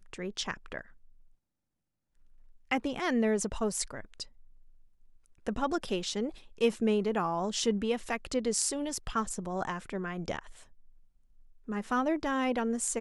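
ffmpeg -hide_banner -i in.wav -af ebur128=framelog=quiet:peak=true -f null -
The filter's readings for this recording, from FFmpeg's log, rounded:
Integrated loudness:
  I:         -32.0 LUFS
  Threshold: -42.6 LUFS
Loudness range:
  LRA:         5.4 LU
  Threshold: -53.4 LUFS
  LRA low:   -36.2 LUFS
  LRA high:  -30.8 LUFS
True peak:
  Peak:      -10.6 dBFS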